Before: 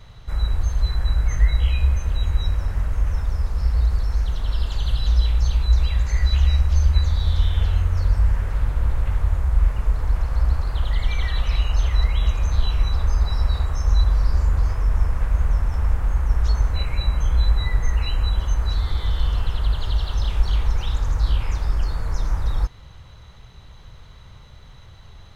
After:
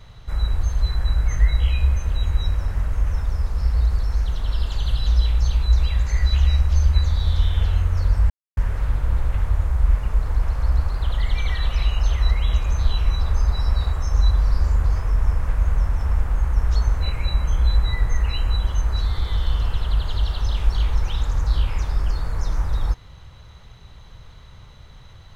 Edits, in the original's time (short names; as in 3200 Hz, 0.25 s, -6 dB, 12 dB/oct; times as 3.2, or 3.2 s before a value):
8.3 insert silence 0.27 s